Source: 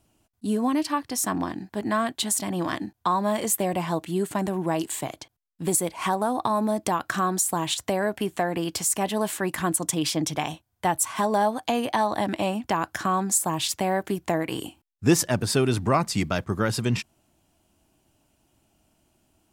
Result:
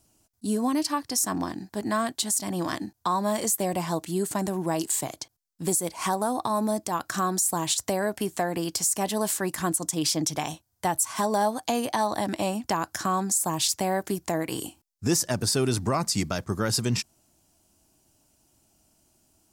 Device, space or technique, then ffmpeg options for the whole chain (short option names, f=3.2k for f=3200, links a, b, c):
over-bright horn tweeter: -af "highshelf=f=4k:t=q:w=1.5:g=7,alimiter=limit=-12.5dB:level=0:latency=1:release=88,volume=-1.5dB"